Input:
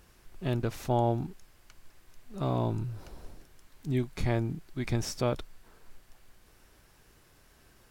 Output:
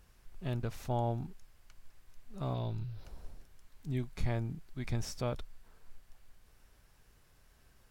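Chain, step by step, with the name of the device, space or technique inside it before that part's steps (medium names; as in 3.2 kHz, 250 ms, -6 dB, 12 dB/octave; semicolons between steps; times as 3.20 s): 2.54–3.05 s: ten-band graphic EQ 250 Hz -5 dB, 1 kHz -5 dB, 4 kHz +9 dB, 8 kHz -11 dB; low shelf boost with a cut just above (bass shelf 78 Hz +7.5 dB; peaking EQ 330 Hz -5 dB 0.51 oct); trim -6.5 dB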